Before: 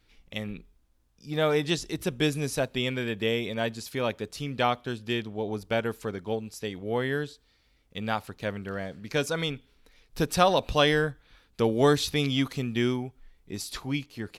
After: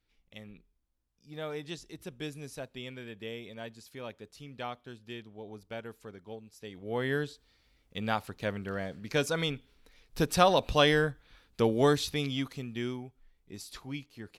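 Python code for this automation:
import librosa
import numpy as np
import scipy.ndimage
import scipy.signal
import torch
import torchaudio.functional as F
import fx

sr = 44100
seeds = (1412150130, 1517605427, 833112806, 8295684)

y = fx.gain(x, sr, db=fx.line((6.54, -13.5), (7.11, -1.5), (11.62, -1.5), (12.67, -9.0)))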